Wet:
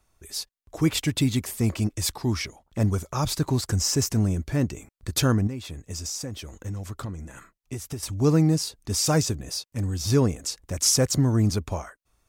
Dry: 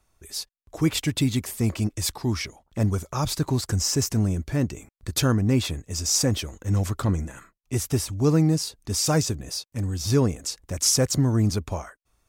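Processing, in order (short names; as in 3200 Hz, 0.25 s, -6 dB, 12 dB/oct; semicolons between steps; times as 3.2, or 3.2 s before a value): 5.47–8.03 compressor 6:1, threshold -31 dBFS, peak gain reduction 14 dB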